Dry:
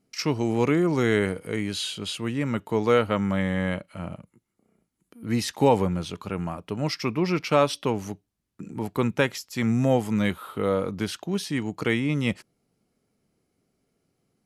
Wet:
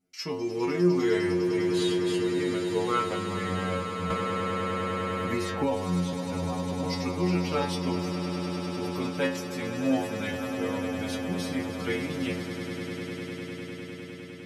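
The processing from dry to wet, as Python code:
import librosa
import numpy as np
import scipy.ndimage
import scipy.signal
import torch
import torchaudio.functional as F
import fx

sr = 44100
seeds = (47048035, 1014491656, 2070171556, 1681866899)

y = fx.stiff_resonator(x, sr, f0_hz=88.0, decay_s=0.51, stiffness=0.002)
y = fx.echo_swell(y, sr, ms=101, loudest=8, wet_db=-12.5)
y = fx.band_squash(y, sr, depth_pct=100, at=(4.1, 6.13))
y = y * librosa.db_to_amplitude(5.5)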